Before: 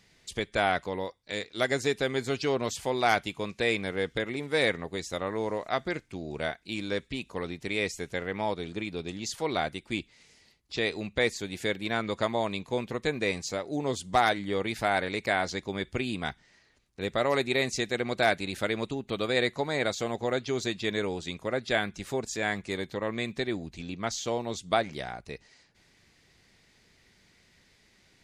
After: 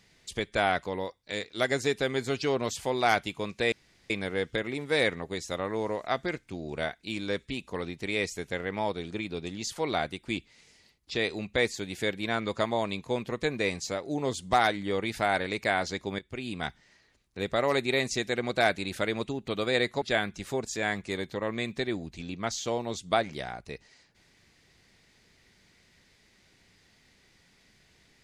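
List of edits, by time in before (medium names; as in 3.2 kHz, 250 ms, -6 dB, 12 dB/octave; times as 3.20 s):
3.72 s: insert room tone 0.38 s
15.81–16.29 s: fade in, from -15.5 dB
19.64–21.62 s: delete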